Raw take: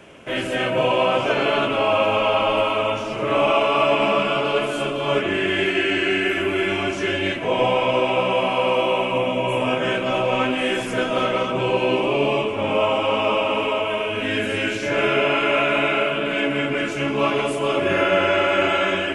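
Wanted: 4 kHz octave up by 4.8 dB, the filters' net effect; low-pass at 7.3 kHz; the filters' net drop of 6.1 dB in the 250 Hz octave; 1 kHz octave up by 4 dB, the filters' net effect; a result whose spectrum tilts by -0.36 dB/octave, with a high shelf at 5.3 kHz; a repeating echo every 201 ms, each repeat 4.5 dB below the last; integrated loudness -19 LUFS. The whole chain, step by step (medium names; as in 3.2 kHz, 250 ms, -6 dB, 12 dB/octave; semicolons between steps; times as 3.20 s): low-pass 7.3 kHz; peaking EQ 250 Hz -9 dB; peaking EQ 1 kHz +5 dB; peaking EQ 4 kHz +6 dB; treble shelf 5.3 kHz +3.5 dB; feedback delay 201 ms, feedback 60%, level -4.5 dB; trim -2.5 dB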